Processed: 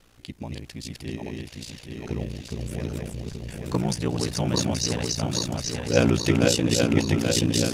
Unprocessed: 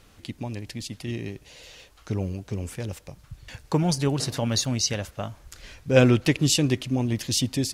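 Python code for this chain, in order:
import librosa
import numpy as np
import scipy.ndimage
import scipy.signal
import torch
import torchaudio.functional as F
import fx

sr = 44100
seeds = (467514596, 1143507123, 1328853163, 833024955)

y = fx.reverse_delay_fb(x, sr, ms=415, feedback_pct=77, wet_db=-2.0)
y = y * np.sin(2.0 * np.pi * 29.0 * np.arange(len(y)) / sr)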